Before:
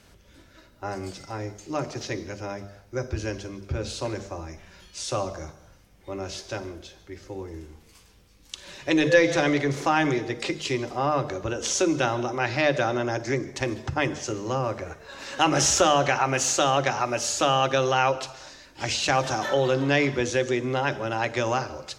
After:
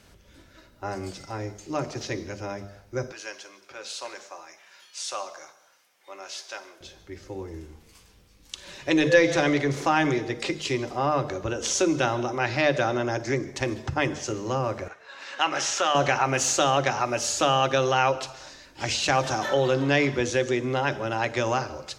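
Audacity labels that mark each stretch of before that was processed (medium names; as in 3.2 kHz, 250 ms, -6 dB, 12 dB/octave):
3.120000	6.810000	high-pass 850 Hz
14.880000	15.950000	band-pass filter 1.9 kHz, Q 0.61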